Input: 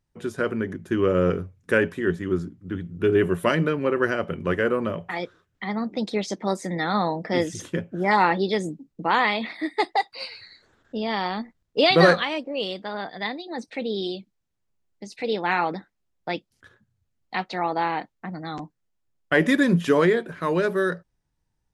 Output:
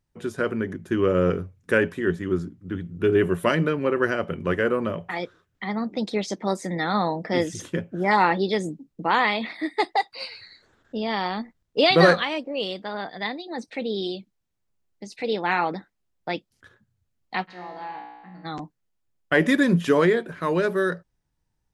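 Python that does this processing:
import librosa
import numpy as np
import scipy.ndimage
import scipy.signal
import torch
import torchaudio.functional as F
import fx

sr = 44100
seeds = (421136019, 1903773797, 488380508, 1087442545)

y = fx.comb_fb(x, sr, f0_hz=60.0, decay_s=1.3, harmonics='all', damping=0.0, mix_pct=90, at=(17.47, 18.44), fade=0.02)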